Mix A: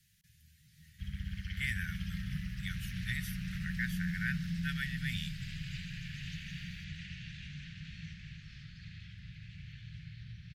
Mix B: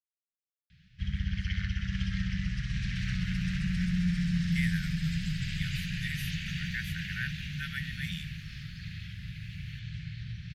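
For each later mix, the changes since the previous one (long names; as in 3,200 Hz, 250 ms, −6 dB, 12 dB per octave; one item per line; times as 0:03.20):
speech: entry +2.95 s
background +8.0 dB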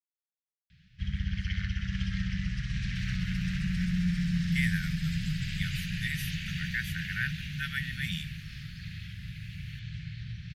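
speech +4.0 dB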